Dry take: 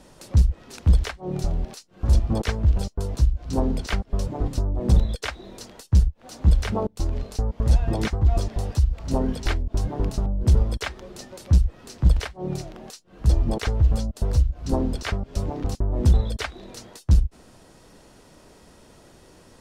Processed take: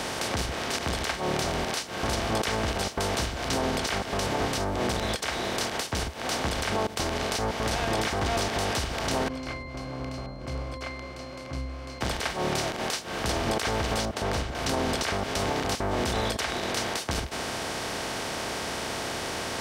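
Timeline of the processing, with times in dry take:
9.28–12.01 s: pitch-class resonator C, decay 0.59 s
14.05–14.55 s: low-pass 1.2 kHz 6 dB/octave
whole clip: spectral levelling over time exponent 0.4; high-pass 930 Hz 6 dB/octave; peak limiter -21.5 dBFS; trim +4.5 dB

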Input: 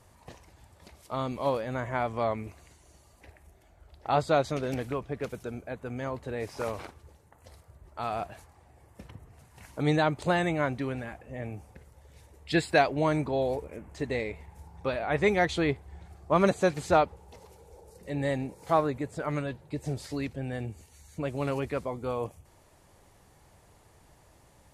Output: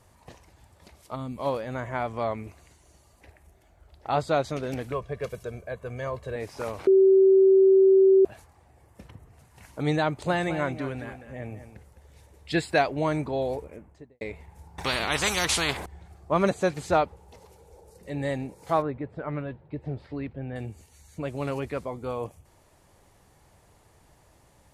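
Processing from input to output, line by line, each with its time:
1.16–1.39 s: time-frequency box 300–7000 Hz -9 dB
4.92–6.36 s: comb 1.8 ms
6.87–8.25 s: bleep 384 Hz -13.5 dBFS
10.09–12.53 s: delay 209 ms -11 dB
13.59–14.21 s: studio fade out
14.78–15.86 s: spectrum-flattening compressor 4:1
18.82–20.56 s: distance through air 430 m

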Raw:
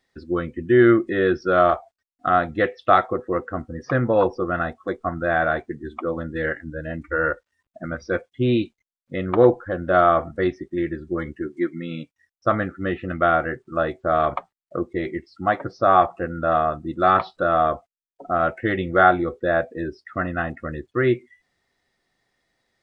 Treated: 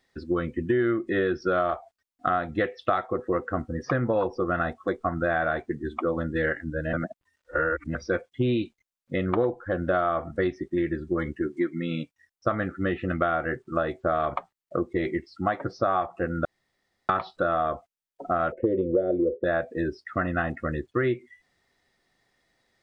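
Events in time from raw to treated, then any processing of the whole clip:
6.93–7.95 s: reverse
16.45–17.09 s: room tone
18.52–19.44 s: FFT filter 170 Hz 0 dB, 550 Hz +14 dB, 850 Hz -29 dB, 2.9 kHz -19 dB
whole clip: compression 6:1, threshold -23 dBFS; trim +1.5 dB

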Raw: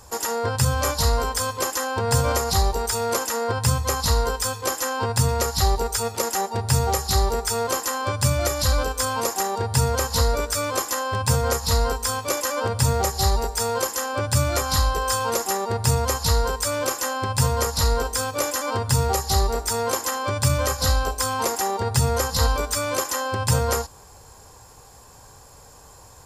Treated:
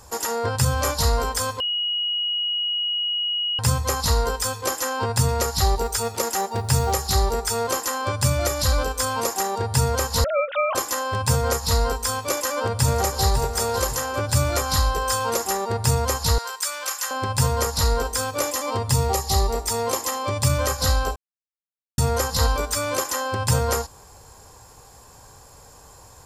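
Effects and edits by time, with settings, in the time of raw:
1.60–3.59 s: bleep 2.9 kHz -21.5 dBFS
5.81–7.14 s: short-mantissa float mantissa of 4-bit
10.24–10.75 s: formants replaced by sine waves
12.32–13.42 s: echo throw 550 ms, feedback 40%, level -9.5 dB
16.38–17.11 s: high-pass 1.2 kHz
18.47–20.47 s: band-stop 1.5 kHz, Q 5
21.16–21.98 s: mute

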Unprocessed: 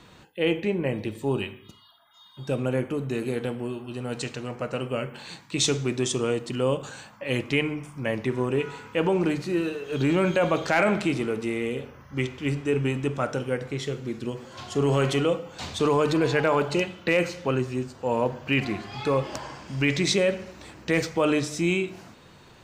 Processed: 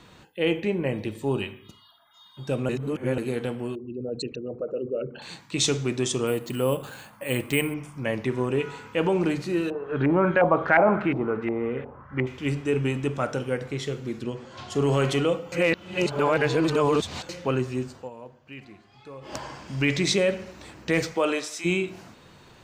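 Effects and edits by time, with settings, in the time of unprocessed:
2.69–3.18 s: reverse
3.75–5.22 s: resonances exaggerated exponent 3
6.27–7.74 s: careless resampling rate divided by 4×, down filtered, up hold
9.70–12.27 s: LFO low-pass saw up 2.8 Hz 750–1900 Hz
14.23–14.70 s: distance through air 57 m
15.52–17.29 s: reverse
17.96–19.35 s: dip -18.5 dB, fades 0.14 s
21.13–21.64 s: high-pass 230 Hz -> 990 Hz

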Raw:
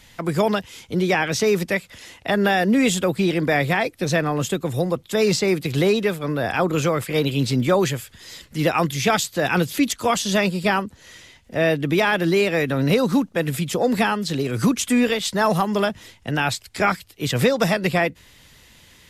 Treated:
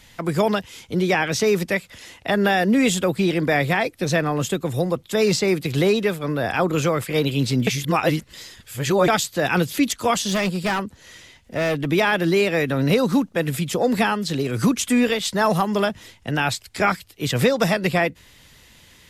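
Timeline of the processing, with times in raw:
7.67–9.08 s: reverse
10.27–11.86 s: overload inside the chain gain 17.5 dB

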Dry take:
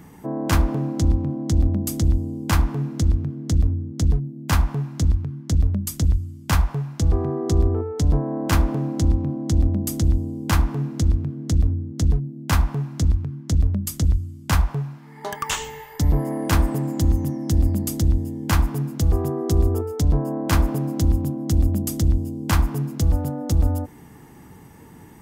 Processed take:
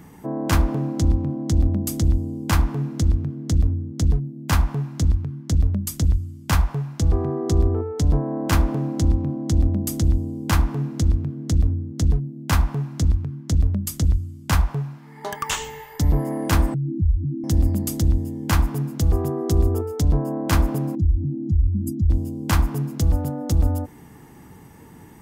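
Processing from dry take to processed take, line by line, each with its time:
16.74–17.44 s: spectral contrast enhancement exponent 3.4
20.95–22.10 s: spectral contrast enhancement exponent 2.3

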